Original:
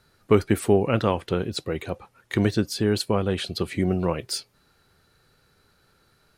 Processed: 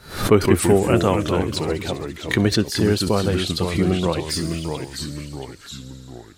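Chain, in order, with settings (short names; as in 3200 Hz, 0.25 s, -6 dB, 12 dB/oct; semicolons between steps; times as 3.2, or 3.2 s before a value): thin delay 66 ms, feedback 84%, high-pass 5200 Hz, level -11 dB; echoes that change speed 0.127 s, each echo -2 st, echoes 3, each echo -6 dB; backwards sustainer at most 120 dB/s; gain +3 dB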